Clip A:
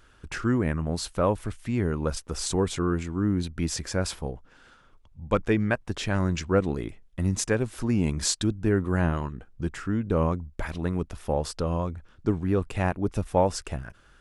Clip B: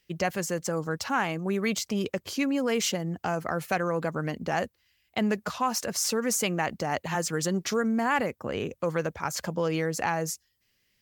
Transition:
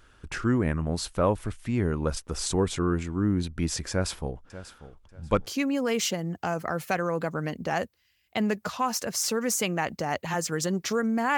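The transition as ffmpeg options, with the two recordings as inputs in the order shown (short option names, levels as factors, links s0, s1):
-filter_complex "[0:a]asettb=1/sr,asplit=3[s0][s1][s2];[s0]atrim=end=3.914[s3];[s1]atrim=start=3.91:end=5.47,asetpts=PTS-STARTPTS,afade=t=in:d=0.004:c=qsin,afade=t=out:st=1.556:d=0.004:c=qsin,aecho=1:1:589|1178|1767:0.178|0.0427|0.0102,atrim=end_sample=68796[s4];[s2]atrim=start=5.466[s5];[s3][s4]acrossfade=d=0.004:c1=hsin:c2=qsin[s6];[s6][s5]acrossfade=d=0.004:c1=qsin:c2=hsin,apad=whole_dur=11.37,atrim=end=11.37,atrim=end=5.472[s7];[1:a]atrim=start=2.278:end=8.18[s8];[s7][s8]acrossfade=d=0.004:c1=hsin:c2=hsin"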